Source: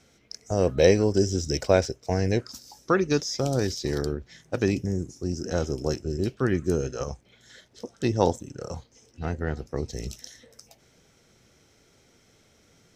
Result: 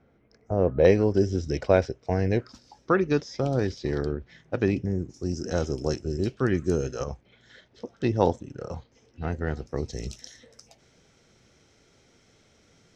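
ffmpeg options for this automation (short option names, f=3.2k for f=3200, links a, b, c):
-af "asetnsamples=n=441:p=0,asendcmd='0.85 lowpass f 3000;5.14 lowpass f 7200;7.04 lowpass f 3500;9.32 lowpass f 7200',lowpass=1.3k"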